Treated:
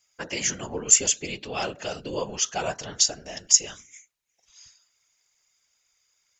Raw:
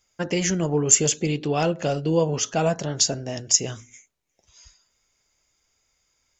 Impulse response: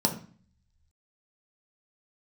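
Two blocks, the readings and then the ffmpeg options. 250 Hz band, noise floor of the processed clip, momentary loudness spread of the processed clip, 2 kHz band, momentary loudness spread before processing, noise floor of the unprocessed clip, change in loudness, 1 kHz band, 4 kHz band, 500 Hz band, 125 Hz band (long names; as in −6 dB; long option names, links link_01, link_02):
−12.5 dB, −73 dBFS, 15 LU, −1.0 dB, 9 LU, −72 dBFS, −1.5 dB, −4.5 dB, +0.5 dB, −9.0 dB, −15.5 dB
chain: -af "tiltshelf=frequency=690:gain=-8,afftfilt=real='hypot(re,im)*cos(2*PI*random(0))':imag='hypot(re,im)*sin(2*PI*random(1))':win_size=512:overlap=0.75,volume=-1dB"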